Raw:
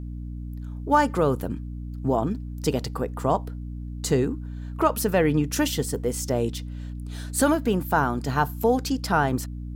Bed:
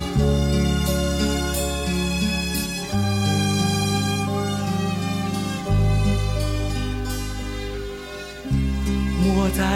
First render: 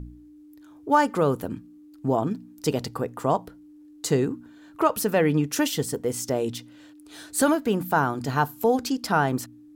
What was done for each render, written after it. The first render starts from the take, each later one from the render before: de-hum 60 Hz, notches 4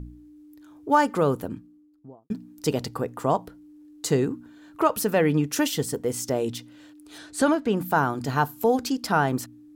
1.25–2.3 studio fade out; 7.18–7.77 air absorption 55 m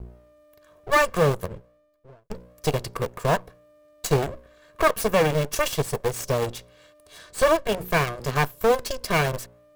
minimum comb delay 1.8 ms; in parallel at -8 dB: bit-crush 4-bit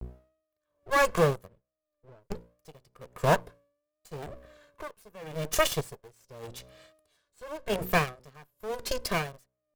vibrato 0.77 Hz 89 cents; dB-linear tremolo 0.89 Hz, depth 30 dB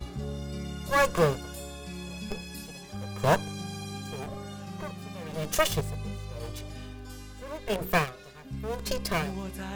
add bed -16.5 dB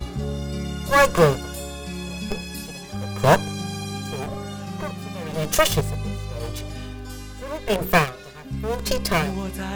gain +7.5 dB; limiter -3 dBFS, peak gain reduction 1.5 dB

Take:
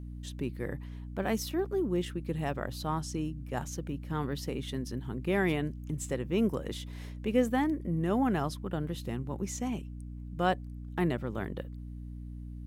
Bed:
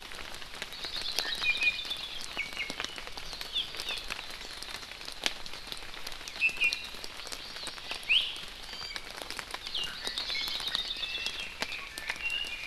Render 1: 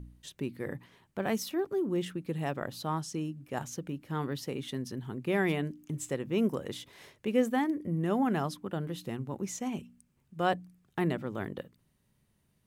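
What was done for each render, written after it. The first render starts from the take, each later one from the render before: de-hum 60 Hz, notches 5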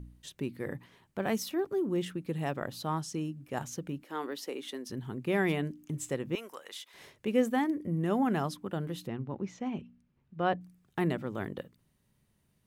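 4.04–4.9 HPF 290 Hz 24 dB/oct; 6.35–6.94 HPF 1000 Hz; 9.07–10.61 air absorption 220 m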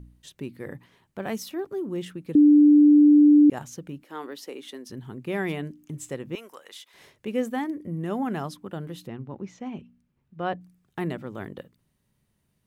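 2.35–3.5 bleep 295 Hz -11 dBFS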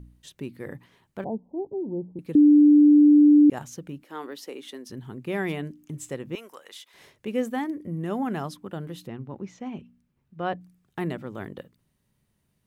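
1.24–2.19 steep low-pass 950 Hz 96 dB/oct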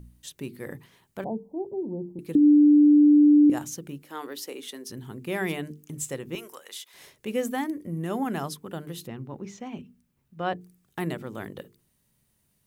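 high shelf 5400 Hz +11 dB; notches 50/100/150/200/250/300/350/400/450 Hz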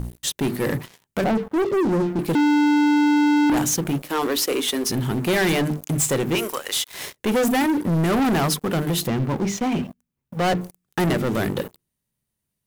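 limiter -16 dBFS, peak gain reduction 4 dB; sample leveller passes 5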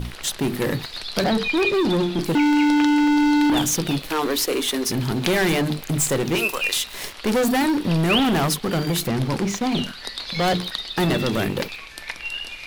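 add bed +3 dB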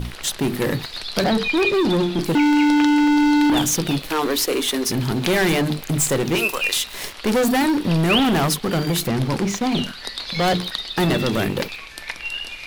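gain +1.5 dB; limiter -2 dBFS, peak gain reduction 2 dB

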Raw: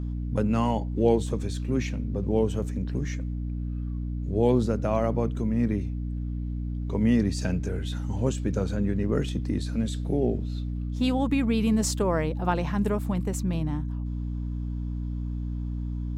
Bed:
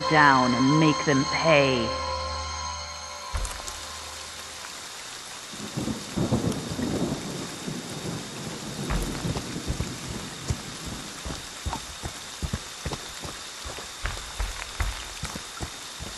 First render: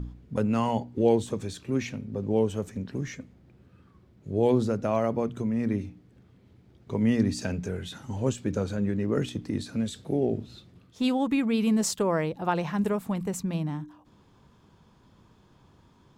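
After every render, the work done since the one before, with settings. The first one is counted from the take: de-hum 60 Hz, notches 5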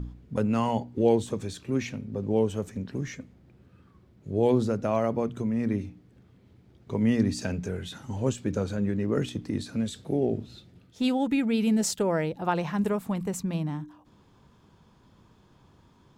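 10.49–12.38 notch 1100 Hz, Q 5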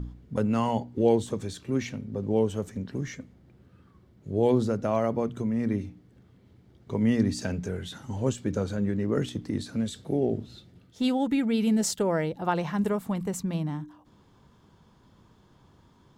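notch 2500 Hz, Q 16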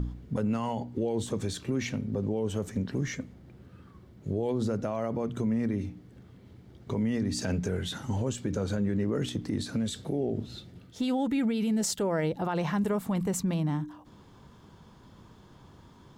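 in parallel at -2 dB: compressor, threshold -34 dBFS, peak gain reduction 16.5 dB; on the sum: limiter -21 dBFS, peak gain reduction 11.5 dB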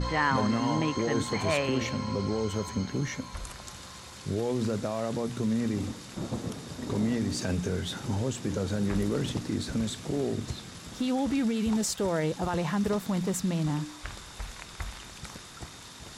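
add bed -9 dB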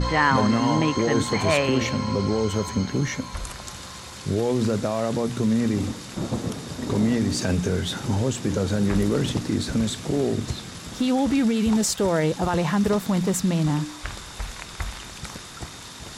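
gain +6.5 dB

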